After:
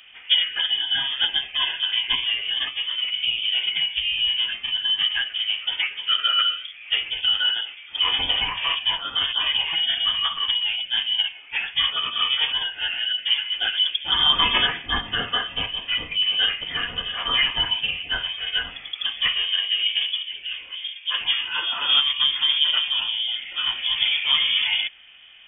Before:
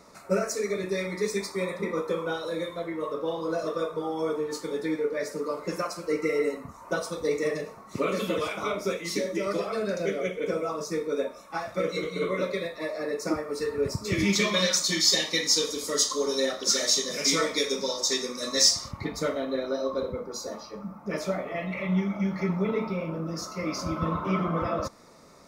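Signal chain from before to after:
phase-vocoder pitch shift with formants kept −5.5 semitones
voice inversion scrambler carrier 3,400 Hz
level +6.5 dB

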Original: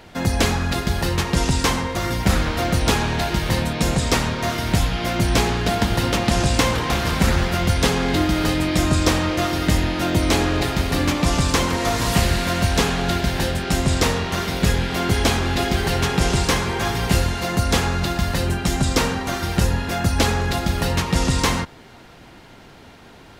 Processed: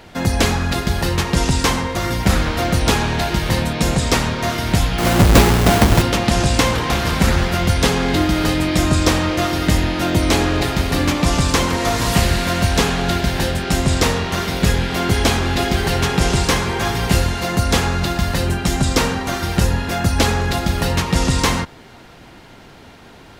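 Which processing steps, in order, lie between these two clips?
0:04.98–0:06.02: each half-wave held at its own peak
level +2.5 dB

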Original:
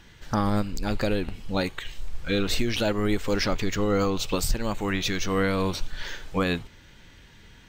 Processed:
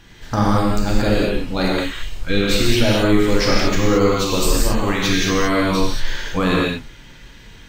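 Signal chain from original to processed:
reverb whose tail is shaped and stops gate 250 ms flat, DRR −4.5 dB
level +3 dB

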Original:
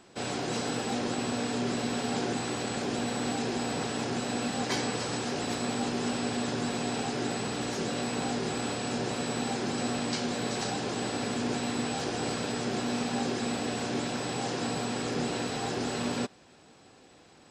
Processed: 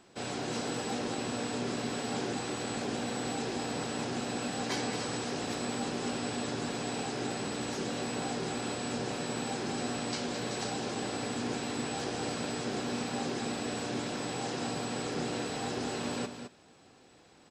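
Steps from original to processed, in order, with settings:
single-tap delay 214 ms −9 dB
level −3.5 dB

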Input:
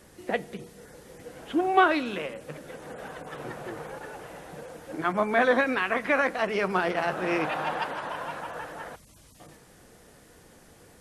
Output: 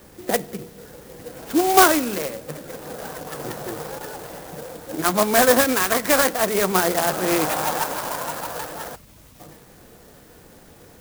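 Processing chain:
converter with an unsteady clock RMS 0.087 ms
level +6.5 dB

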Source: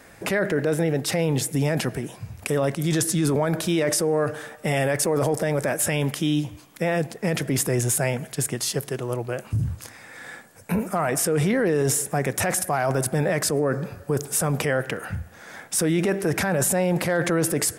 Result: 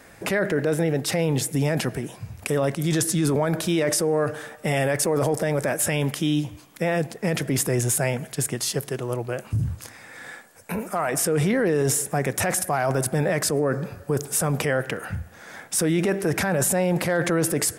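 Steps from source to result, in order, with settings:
0:10.32–0:11.14: parametric band 120 Hz −8 dB 2.4 octaves

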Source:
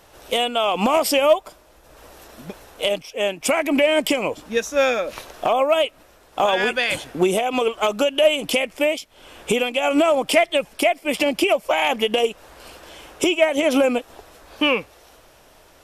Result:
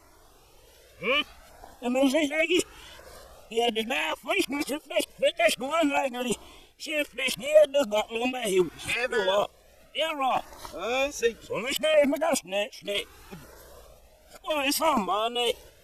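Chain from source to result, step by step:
played backwards from end to start
auto-filter notch saw down 0.67 Hz 420–3,400 Hz
flanger whose copies keep moving one way rising 0.47 Hz

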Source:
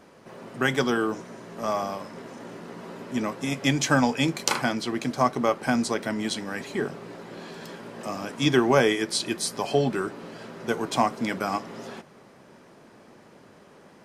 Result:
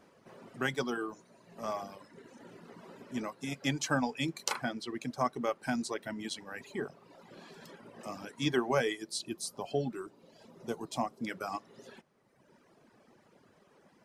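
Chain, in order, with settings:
reverb reduction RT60 1.4 s
0:08.97–0:11.27: parametric band 1,800 Hz −9.5 dB 1.4 octaves
level −8.5 dB

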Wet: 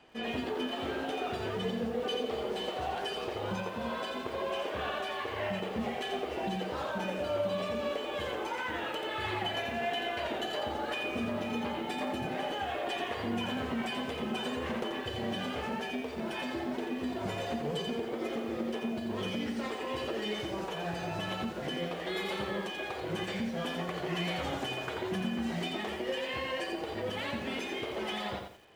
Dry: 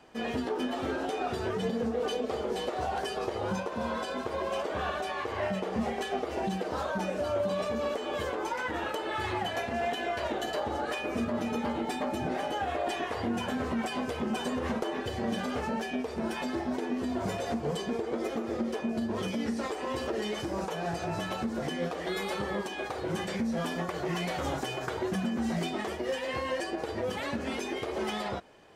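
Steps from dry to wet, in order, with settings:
drawn EQ curve 1,400 Hz 0 dB, 3,000 Hz +6 dB, 5,600 Hz −3 dB
feedback echo at a low word length 86 ms, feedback 35%, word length 9 bits, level −5 dB
level −4 dB

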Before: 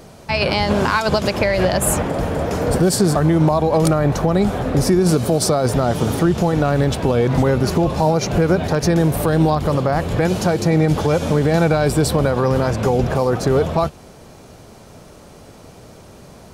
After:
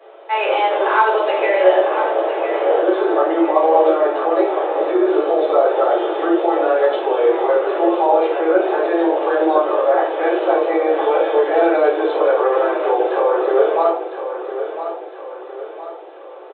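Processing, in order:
Butterworth high-pass 340 Hz 96 dB per octave
high-shelf EQ 2,100 Hz −9.5 dB
repeating echo 1,008 ms, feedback 46%, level −10 dB
rectangular room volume 66 cubic metres, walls mixed, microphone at 2.3 metres
downsampling to 8,000 Hz
level −6 dB

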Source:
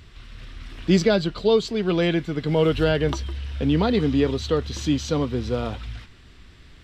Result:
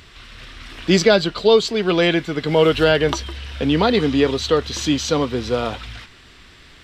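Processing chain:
low-shelf EQ 280 Hz −11.5 dB
level +8.5 dB

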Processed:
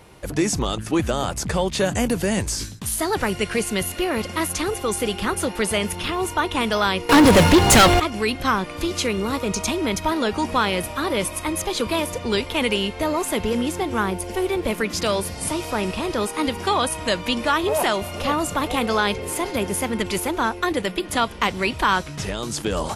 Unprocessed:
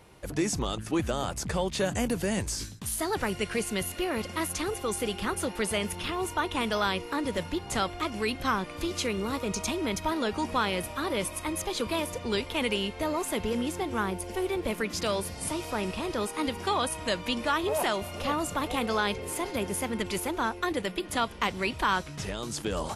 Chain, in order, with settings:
0:07.09–0:08.00: leveller curve on the samples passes 5
level +7 dB

